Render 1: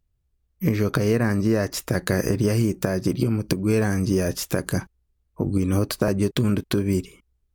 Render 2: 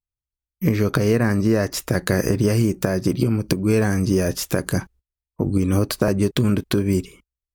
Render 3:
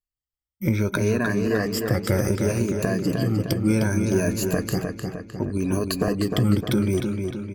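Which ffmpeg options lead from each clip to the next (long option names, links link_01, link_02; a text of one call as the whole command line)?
ffmpeg -i in.wav -af "agate=range=-24dB:threshold=-48dB:ratio=16:detection=peak,volume=2.5dB" out.wav
ffmpeg -i in.wav -filter_complex "[0:a]afftfilt=real='re*pow(10,15/40*sin(2*PI*(1.5*log(max(b,1)*sr/1024/100)/log(2)-(0.66)*(pts-256)/sr)))':imag='im*pow(10,15/40*sin(2*PI*(1.5*log(max(b,1)*sr/1024/100)/log(2)-(0.66)*(pts-256)/sr)))':win_size=1024:overlap=0.75,asplit=2[link_01][link_02];[link_02]adelay=306,lowpass=frequency=4800:poles=1,volume=-5dB,asplit=2[link_03][link_04];[link_04]adelay=306,lowpass=frequency=4800:poles=1,volume=0.54,asplit=2[link_05][link_06];[link_06]adelay=306,lowpass=frequency=4800:poles=1,volume=0.54,asplit=2[link_07][link_08];[link_08]adelay=306,lowpass=frequency=4800:poles=1,volume=0.54,asplit=2[link_09][link_10];[link_10]adelay=306,lowpass=frequency=4800:poles=1,volume=0.54,asplit=2[link_11][link_12];[link_12]adelay=306,lowpass=frequency=4800:poles=1,volume=0.54,asplit=2[link_13][link_14];[link_14]adelay=306,lowpass=frequency=4800:poles=1,volume=0.54[link_15];[link_01][link_03][link_05][link_07][link_09][link_11][link_13][link_15]amix=inputs=8:normalize=0,volume=-6dB" out.wav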